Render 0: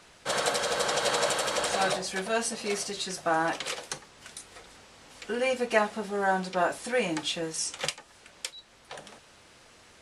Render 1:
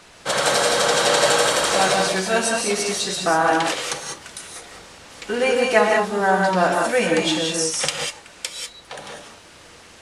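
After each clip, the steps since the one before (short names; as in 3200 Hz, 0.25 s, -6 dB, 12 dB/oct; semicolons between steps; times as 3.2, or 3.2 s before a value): non-linear reverb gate 0.22 s rising, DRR 0.5 dB; gain +7 dB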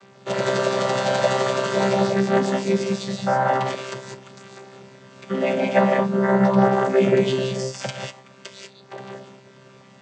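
chord vocoder bare fifth, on C3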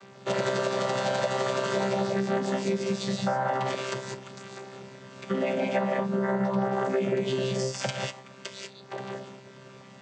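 compressor 6:1, threshold -24 dBFS, peak gain reduction 12 dB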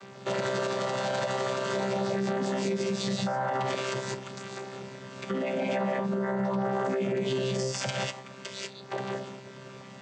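limiter -24.5 dBFS, peak gain reduction 9 dB; gain +3 dB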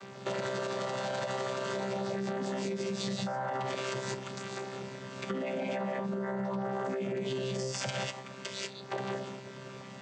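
compressor, threshold -31 dBFS, peak gain reduction 6 dB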